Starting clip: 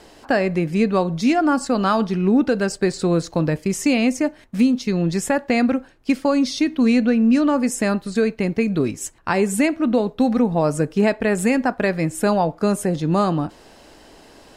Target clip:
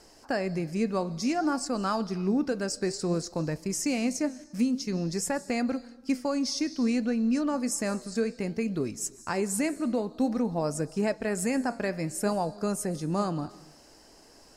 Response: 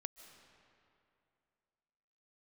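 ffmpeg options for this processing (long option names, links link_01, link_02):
-filter_complex "[0:a]flanger=delay=0.7:depth=8:regen=86:speed=0.55:shape=sinusoidal,asplit=2[link_01][link_02];[link_02]highshelf=frequency=3700:width_type=q:width=3:gain=11[link_03];[1:a]atrim=start_sample=2205,afade=type=out:start_time=0.41:duration=0.01,atrim=end_sample=18522[link_04];[link_03][link_04]afir=irnorm=-1:irlink=0,volume=-3dB[link_05];[link_01][link_05]amix=inputs=2:normalize=0,volume=-8.5dB"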